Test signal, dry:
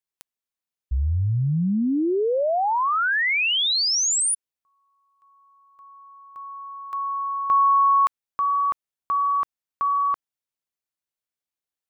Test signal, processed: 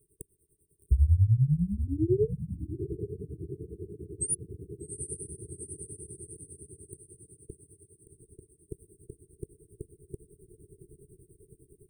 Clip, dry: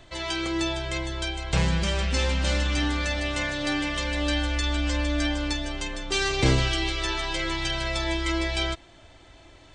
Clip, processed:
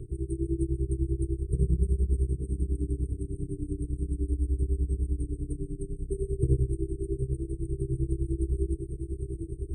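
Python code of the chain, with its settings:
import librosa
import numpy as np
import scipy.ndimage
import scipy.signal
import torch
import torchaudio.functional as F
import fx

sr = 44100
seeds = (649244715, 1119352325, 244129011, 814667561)

y = fx.bin_compress(x, sr, power=0.6)
y = fx.echo_diffused(y, sr, ms=796, feedback_pct=60, wet_db=-8.0)
y = fx.rider(y, sr, range_db=4, speed_s=2.0)
y = fx.low_shelf(y, sr, hz=260.0, db=10.5)
y = fx.tremolo_shape(y, sr, shape='triangle', hz=10.0, depth_pct=100)
y = fx.brickwall_bandstop(y, sr, low_hz=450.0, high_hz=8200.0)
y = fx.low_shelf(y, sr, hz=96.0, db=-9.0)
y = fx.fixed_phaser(y, sr, hz=1200.0, stages=8)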